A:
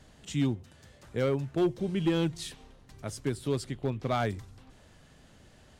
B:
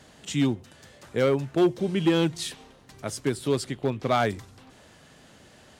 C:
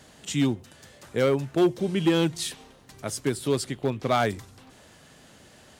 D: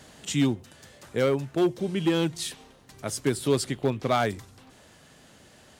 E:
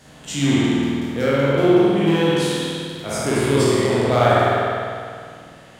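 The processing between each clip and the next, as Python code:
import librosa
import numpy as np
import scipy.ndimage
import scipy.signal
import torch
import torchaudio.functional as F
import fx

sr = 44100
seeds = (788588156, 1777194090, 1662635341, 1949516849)

y1 = fx.highpass(x, sr, hz=210.0, slope=6)
y1 = y1 * 10.0 ** (7.0 / 20.0)
y2 = fx.high_shelf(y1, sr, hz=8000.0, db=6.0)
y3 = fx.rider(y2, sr, range_db=3, speed_s=0.5)
y4 = fx.spec_trails(y3, sr, decay_s=1.67)
y4 = fx.rev_spring(y4, sr, rt60_s=2.0, pass_ms=(50,), chirp_ms=65, drr_db=-6.5)
y4 = y4 * 10.0 ** (-1.5 / 20.0)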